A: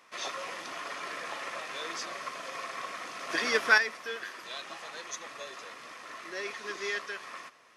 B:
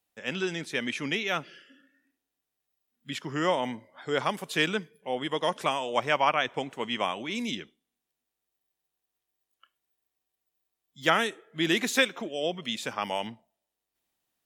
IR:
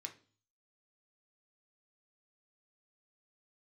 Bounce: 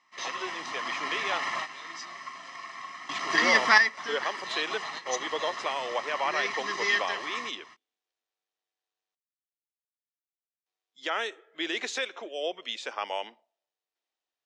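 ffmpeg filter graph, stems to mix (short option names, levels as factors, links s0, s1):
-filter_complex "[0:a]aecho=1:1:1:0.78,volume=0.891,asplit=2[s0][s1];[s1]volume=0.299[s2];[1:a]highpass=f=370:w=0.5412,highpass=f=370:w=1.3066,alimiter=limit=0.133:level=0:latency=1:release=85,volume=0.473,asplit=3[s3][s4][s5];[s3]atrim=end=9.15,asetpts=PTS-STARTPTS,afade=t=out:st=9.146:d=0.004:c=hsin[s6];[s4]atrim=start=9.15:end=10.66,asetpts=PTS-STARTPTS,volume=0[s7];[s5]atrim=start=10.66,asetpts=PTS-STARTPTS,afade=t=in:d=0.004:c=hsin[s8];[s6][s7][s8]concat=n=3:v=0:a=1,asplit=2[s9][s10];[s10]apad=whole_len=342436[s11];[s0][s11]sidechaingate=range=0.2:threshold=0.001:ratio=16:detection=peak[s12];[2:a]atrim=start_sample=2205[s13];[s2][s13]afir=irnorm=-1:irlink=0[s14];[s12][s9][s14]amix=inputs=3:normalize=0,lowpass=f=6500:w=0.5412,lowpass=f=6500:w=1.3066,dynaudnorm=f=180:g=11:m=1.78"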